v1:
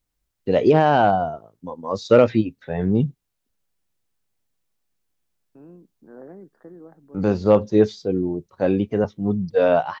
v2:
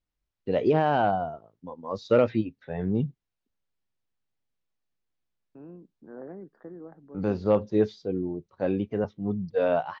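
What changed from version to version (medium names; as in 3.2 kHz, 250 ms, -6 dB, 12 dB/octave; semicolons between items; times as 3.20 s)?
first voice -7.0 dB; master: add low-pass 4.6 kHz 12 dB/octave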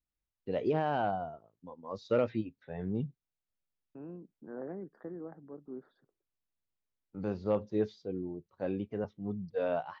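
first voice -8.0 dB; second voice: entry -1.60 s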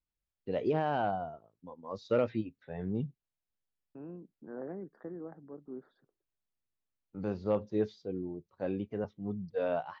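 no change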